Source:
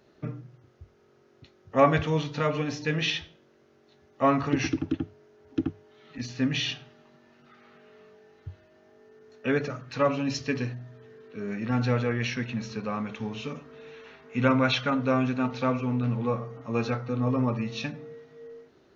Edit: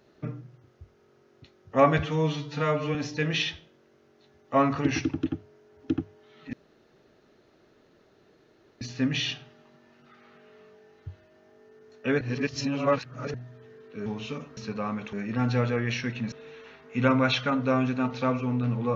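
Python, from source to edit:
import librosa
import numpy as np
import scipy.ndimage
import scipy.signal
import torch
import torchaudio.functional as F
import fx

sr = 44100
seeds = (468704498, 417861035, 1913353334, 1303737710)

y = fx.edit(x, sr, fx.stretch_span(start_s=1.99, length_s=0.64, factor=1.5),
    fx.insert_room_tone(at_s=6.21, length_s=2.28),
    fx.reverse_span(start_s=9.61, length_s=1.13),
    fx.swap(start_s=11.46, length_s=1.19, other_s=13.21, other_length_s=0.51), tone=tone)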